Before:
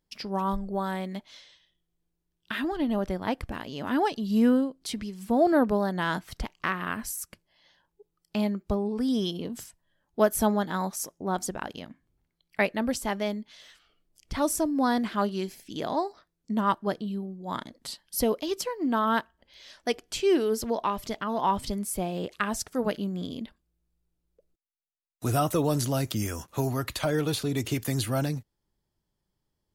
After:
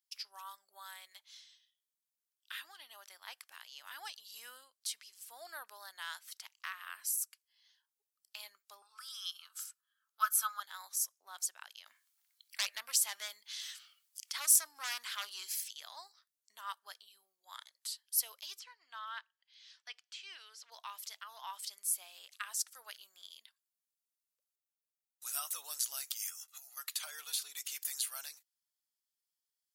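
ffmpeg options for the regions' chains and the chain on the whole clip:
-filter_complex "[0:a]asettb=1/sr,asplit=3[s0][s1][s2];[s0]atrim=end=8.824[s3];[s1]atrim=start=8.82:end=10.6,asetpts=PTS-STARTPTS,afade=t=in:d=0.004:c=qsin,afade=t=out:st=1.776:d=0.004:c=qsin,highpass=f=1300:t=q:w=10,bandreject=f=1900:w=7.8[s4];[s2]atrim=start=10.596[s5];[s3][s4]acrossfade=d=0.004:c1=hsin:c2=qsin[s6];[s6][s5]acrossfade=d=0.004:c1=qsin:c2=hsin,asettb=1/sr,asplit=3[s7][s8][s9];[s7]atrim=end=11.864[s10];[s8]atrim=start=11.86:end=15.71,asetpts=PTS-STARTPTS,afade=t=in:d=0.004:c=qsin,afade=t=out:st=3.846:d=0.004:c=qsin,aeval=exprs='0.282*sin(PI/2*3.16*val(0)/0.282)':c=same,acompressor=threshold=0.0251:ratio=1.5:attack=3.2:release=140:knee=1:detection=peak[s11];[s9]atrim=start=15.706[s12];[s10][s11]acrossfade=d=0.004:c1=hsin:c2=qsin[s13];[s13][s12]acrossfade=d=0.004:c1=qsin:c2=hsin,asettb=1/sr,asplit=3[s14][s15][s16];[s14]atrim=end=18.594[s17];[s15]atrim=start=18.59:end=20.72,asetpts=PTS-STARTPTS,afade=t=in:d=0.004:c=qsin,afade=t=out:st=2.126:d=0.004:c=qsin,lowpass=4400,acrossover=split=3300[s18][s19];[s19]acompressor=threshold=0.00447:ratio=4:attack=1:release=60[s20];[s18][s20]amix=inputs=2:normalize=0,equalizer=f=180:w=0.36:g=-11[s21];[s16]atrim=start=20.716[s22];[s17][s21]acrossfade=d=0.004:c1=hsin:c2=qsin[s23];[s23][s22]acrossfade=d=0.004:c1=qsin:c2=hsin,asettb=1/sr,asplit=3[s24][s25][s26];[s24]atrim=end=26.294[s27];[s25]atrim=start=26.29:end=26.77,asetpts=PTS-STARTPTS,afade=t=in:d=0.004:c=qsin,afade=t=out:st=0.476:d=0.004:c=qsin,acompressor=threshold=0.0158:ratio=8:attack=3.2:release=140:knee=1:detection=peak,lowshelf=f=440:g=-11.5,aecho=1:1:1.5:0.7,atrim=end_sample=21168[s28];[s26]atrim=start=26.766[s29];[s27][s28]acrossfade=d=0.004:c1=hsin:c2=qsin[s30];[s30][s29]acrossfade=d=0.004:c1=qsin:c2=hsin,highpass=f=1400:w=0.5412,highpass=f=1400:w=1.3066,equalizer=f=1800:w=0.54:g=-14,volume=1.26"

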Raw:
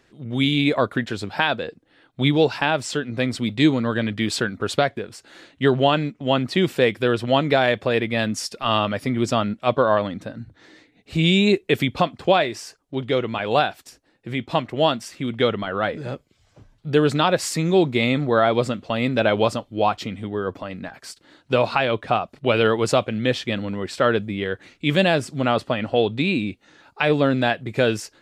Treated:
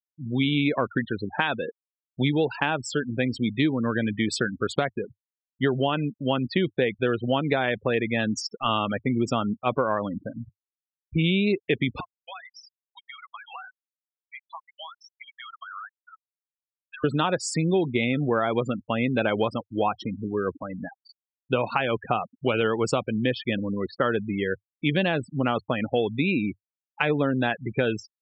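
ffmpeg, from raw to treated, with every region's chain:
-filter_complex "[0:a]asettb=1/sr,asplit=3[s0][s1][s2];[s0]atrim=end=12.004[s3];[s1]atrim=start=12:end=17.04,asetpts=PTS-STARTPTS,afade=t=in:d=0.004:c=qsin,afade=t=out:st=5.036:d=0.004:c=qsin,highpass=f=970:w=0.5412,highpass=f=970:w=1.3066,acompressor=threshold=0.0282:ratio=12:attack=3.2:release=140:knee=1:detection=peak[s4];[s2]atrim=start=17.036[s5];[s3][s4]acrossfade=d=0.004:c1=hsin:c2=qsin[s6];[s6][s5]acrossfade=d=0.004:c1=qsin:c2=hsin,afftfilt=real='re*gte(hypot(re,im),0.0562)':imag='im*gte(hypot(re,im),0.0562)':win_size=1024:overlap=0.75,equalizer=f=100:t=o:w=0.33:g=-4,equalizer=f=630:t=o:w=0.33:g=-5,equalizer=f=4000:t=o:w=0.33:g=-7,acompressor=threshold=0.112:ratio=6"

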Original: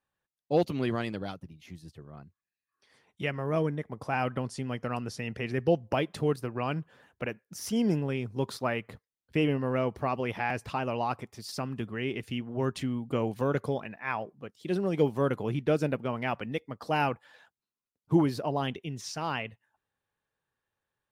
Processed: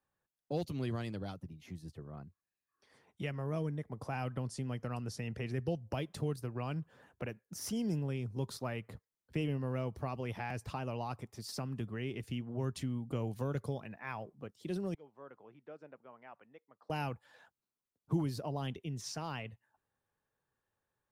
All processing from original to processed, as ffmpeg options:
-filter_complex "[0:a]asettb=1/sr,asplit=3[s0][s1][s2];[s0]atrim=end=14.944[s3];[s1]atrim=start=14.94:end=16.9,asetpts=PTS-STARTPTS,afade=t=in:d=0.004:c=qsin,afade=t=out:st=1.956:d=0.004:c=qsin,lowpass=1200,aderivative[s4];[s2]atrim=start=16.896[s5];[s3][s4]acrossfade=d=0.004:c1=hsin:c2=qsin[s6];[s6][s5]acrossfade=d=0.004:c1=qsin:c2=hsin,highshelf=f=6400:g=-4,acrossover=split=130|3000[s7][s8][s9];[s8]acompressor=threshold=0.00501:ratio=2[s10];[s7][s10][s9]amix=inputs=3:normalize=0,equalizer=f=3000:w=0.7:g=-6,volume=1.12"

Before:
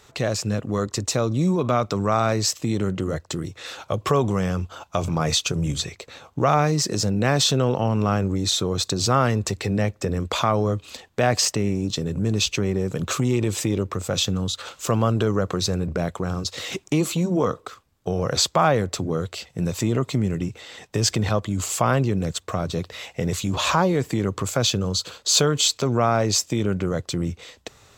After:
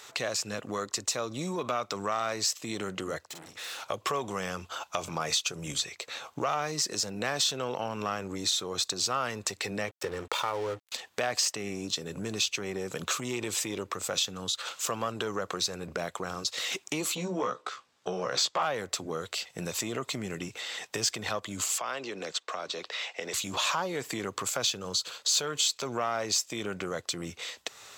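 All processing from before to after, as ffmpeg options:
-filter_complex "[0:a]asettb=1/sr,asplit=3[s0][s1][s2];[s0]atrim=end=3.274[s3];[s1]atrim=start=3.27:end=3.83,asetpts=PTS-STARTPTS,afade=t=in:d=0.004:c=qsin,afade=t=out:st=0.556:d=0.004:c=qsin,acompressor=threshold=0.0282:ratio=3:attack=3.2:release=140:knee=1:detection=peak,aeval=exprs='(tanh(126*val(0)+0.65)-tanh(0.65))/126':c=same,asplit=2[s4][s5];[s5]adelay=47,volume=0.422[s6];[s4][s6]amix=inputs=2:normalize=0,atrim=end_sample=24696[s7];[s2]atrim=start=3.826[s8];[s3][s7]acrossfade=d=0.004:c1=hsin:c2=qsin[s9];[s9][s8]acrossfade=d=0.004:c1=qsin:c2=hsin,asettb=1/sr,asplit=3[s10][s11][s12];[s10]atrim=end=9.884[s13];[s11]atrim=start=9.88:end=10.92,asetpts=PTS-STARTPTS,afade=t=in:d=0.004:c=qsin,afade=t=out:st=1.036:d=0.004:c=qsin,highshelf=f=4400:g=-7.5,aecho=1:1:2.2:0.64,atrim=end_sample=45864,aeval=exprs='sgn(val(0))*max(abs(val(0))-0.0158,0)':c=same[s14];[s12]atrim=start=10.916[s15];[s13][s14]acrossfade=d=0.004:c1=hsin:c2=qsin[s16];[s16][s15]acrossfade=d=0.004:c1=qsin:c2=hsin,asettb=1/sr,asplit=3[s17][s18][s19];[s17]atrim=end=17.154[s20];[s18]atrim=start=17.15:end=18.63,asetpts=PTS-STARTPTS,afade=t=in:d=0.004:c=qsin,afade=t=out:st=1.476:d=0.004:c=qsin,highpass=100,lowpass=6400,asplit=2[s21][s22];[s22]adelay=16,volume=0.708[s23];[s21][s23]amix=inputs=2:normalize=0,atrim=end_sample=65268[s24];[s19]atrim=start=18.626[s25];[s20][s24]acrossfade=d=0.004:c1=hsin:c2=qsin[s26];[s26][s25]acrossfade=d=0.004:c1=qsin:c2=hsin,asettb=1/sr,asplit=3[s27][s28][s29];[s27]atrim=end=21.784[s30];[s28]atrim=start=21.78:end=23.34,asetpts=PTS-STARTPTS,afade=t=in:d=0.004:c=qsin,afade=t=out:st=1.556:d=0.004:c=qsin,acrossover=split=260 6500:gain=0.0794 1 0.1[s31][s32][s33];[s31][s32][s33]amix=inputs=3:normalize=0,acrossover=split=150|3000[s34][s35][s36];[s35]acompressor=threshold=0.0316:ratio=2:attack=3.2:release=140:knee=2.83:detection=peak[s37];[s34][s37][s36]amix=inputs=3:normalize=0[s38];[s29]atrim=start=23.336[s39];[s30][s38]acrossfade=d=0.004:c1=hsin:c2=qsin[s40];[s40][s39]acrossfade=d=0.004:c1=qsin:c2=hsin,acontrast=70,highpass=f=1100:p=1,acompressor=threshold=0.0178:ratio=2"

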